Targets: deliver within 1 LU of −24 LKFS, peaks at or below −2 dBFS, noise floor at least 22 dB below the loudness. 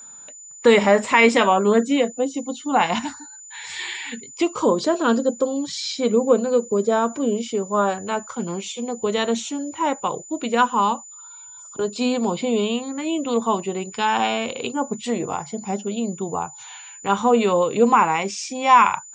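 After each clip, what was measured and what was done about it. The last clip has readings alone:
interfering tone 7,000 Hz; level of the tone −39 dBFS; integrated loudness −21.0 LKFS; sample peak −2.0 dBFS; target loudness −24.0 LKFS
→ notch filter 7,000 Hz, Q 30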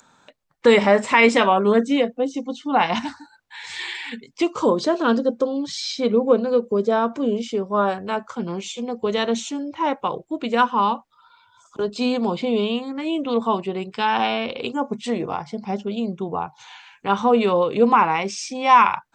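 interfering tone none found; integrated loudness −21.0 LKFS; sample peak −2.0 dBFS; target loudness −24.0 LKFS
→ level −3 dB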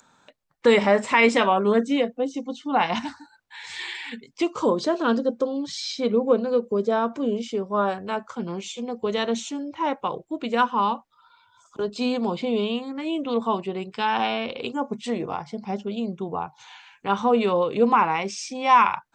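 integrated loudness −24.0 LKFS; sample peak −5.0 dBFS; background noise floor −62 dBFS

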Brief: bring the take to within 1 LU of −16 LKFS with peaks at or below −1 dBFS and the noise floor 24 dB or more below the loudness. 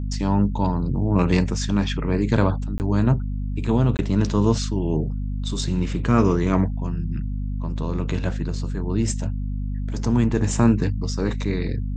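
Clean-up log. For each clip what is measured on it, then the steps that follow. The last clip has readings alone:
number of dropouts 2; longest dropout 19 ms; mains hum 50 Hz; hum harmonics up to 250 Hz; level of the hum −23 dBFS; integrated loudness −23.0 LKFS; sample peak −3.5 dBFS; target loudness −16.0 LKFS
→ repair the gap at 0:02.78/0:03.97, 19 ms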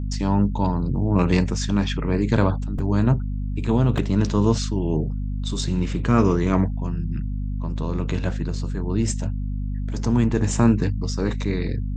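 number of dropouts 0; mains hum 50 Hz; hum harmonics up to 250 Hz; level of the hum −24 dBFS
→ hum removal 50 Hz, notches 5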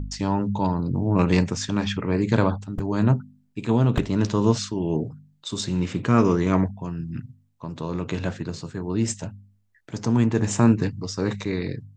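mains hum none found; integrated loudness −24.0 LKFS; sample peak −4.0 dBFS; target loudness −16.0 LKFS
→ level +8 dB
brickwall limiter −1 dBFS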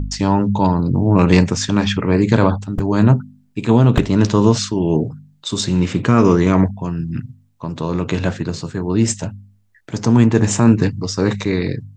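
integrated loudness −16.5 LKFS; sample peak −1.0 dBFS; background noise floor −56 dBFS

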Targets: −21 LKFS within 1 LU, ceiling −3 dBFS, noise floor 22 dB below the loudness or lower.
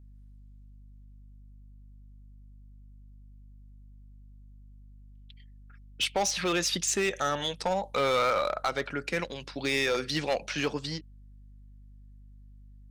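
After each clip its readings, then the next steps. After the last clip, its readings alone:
share of clipped samples 0.7%; peaks flattened at −21.0 dBFS; mains hum 50 Hz; hum harmonics up to 250 Hz; level of the hum −49 dBFS; integrated loudness −29.0 LKFS; sample peak −21.0 dBFS; target loudness −21.0 LKFS
→ clipped peaks rebuilt −21 dBFS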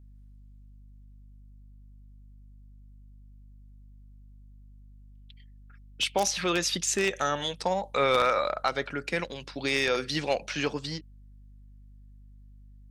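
share of clipped samples 0.0%; mains hum 50 Hz; hum harmonics up to 250 Hz; level of the hum −49 dBFS
→ hum removal 50 Hz, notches 5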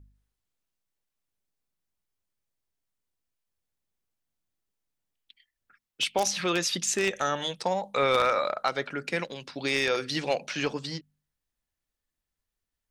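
mains hum none found; integrated loudness −28.0 LKFS; sample peak −11.5 dBFS; target loudness −21.0 LKFS
→ level +7 dB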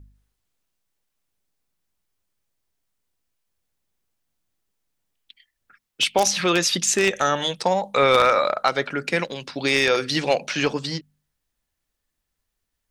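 integrated loudness −21.0 LKFS; sample peak −4.5 dBFS; background noise floor −80 dBFS

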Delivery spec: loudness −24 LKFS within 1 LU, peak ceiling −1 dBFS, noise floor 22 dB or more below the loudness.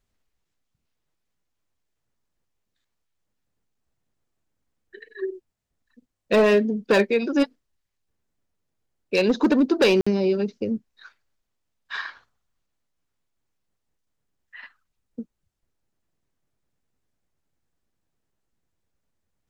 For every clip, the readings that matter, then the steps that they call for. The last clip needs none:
share of clipped samples 0.3%; peaks flattened at −12.5 dBFS; number of dropouts 1; longest dropout 55 ms; integrated loudness −22.0 LKFS; sample peak −12.5 dBFS; target loudness −24.0 LKFS
→ clipped peaks rebuilt −12.5 dBFS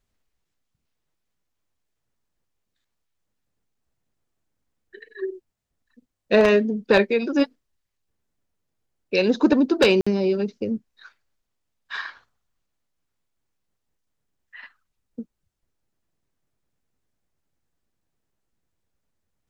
share of clipped samples 0.0%; number of dropouts 1; longest dropout 55 ms
→ repair the gap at 0:10.01, 55 ms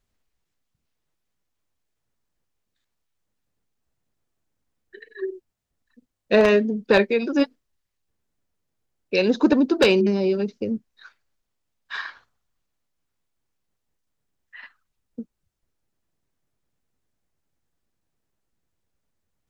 number of dropouts 0; integrated loudness −21.0 LKFS; sample peak −3.5 dBFS; target loudness −24.0 LKFS
→ level −3 dB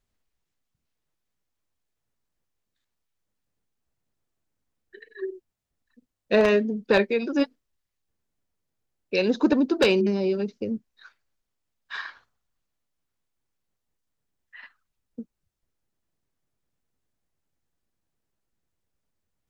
integrated loudness −24.0 LKFS; sample peak −6.5 dBFS; background noise floor −82 dBFS

